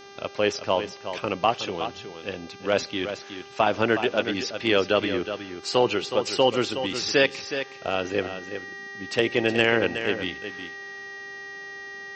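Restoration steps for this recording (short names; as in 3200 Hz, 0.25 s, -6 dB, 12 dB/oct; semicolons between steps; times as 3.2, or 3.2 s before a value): de-hum 397.8 Hz, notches 16; notch 1900 Hz, Q 30; inverse comb 0.368 s -9.5 dB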